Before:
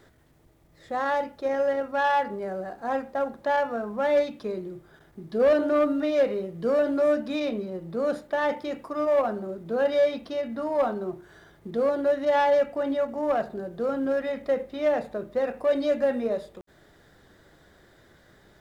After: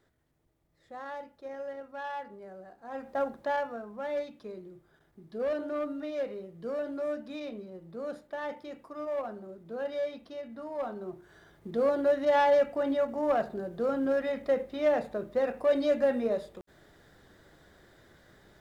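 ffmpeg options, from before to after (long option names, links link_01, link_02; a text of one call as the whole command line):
ffmpeg -i in.wav -af "volume=6.5dB,afade=type=in:start_time=2.91:duration=0.28:silence=0.251189,afade=type=out:start_time=3.19:duration=0.66:silence=0.375837,afade=type=in:start_time=10.78:duration=1.13:silence=0.354813" out.wav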